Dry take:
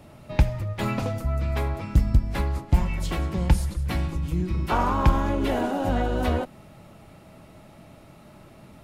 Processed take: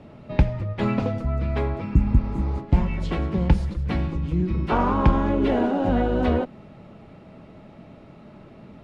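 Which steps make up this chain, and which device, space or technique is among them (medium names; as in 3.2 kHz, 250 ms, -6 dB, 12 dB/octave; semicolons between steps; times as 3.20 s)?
spectral replace 1.92–2.55 s, 390–6100 Hz both; inside a cardboard box (low-pass 3.7 kHz 12 dB/octave; small resonant body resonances 220/420 Hz, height 6 dB, ringing for 20 ms)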